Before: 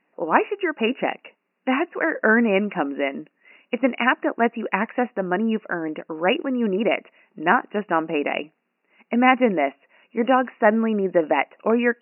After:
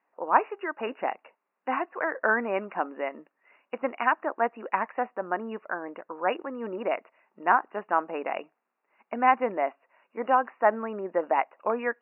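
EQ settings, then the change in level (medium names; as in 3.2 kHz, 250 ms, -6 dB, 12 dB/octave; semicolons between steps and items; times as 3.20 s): band-pass filter 1 kHz, Q 1.4; distance through air 200 m; 0.0 dB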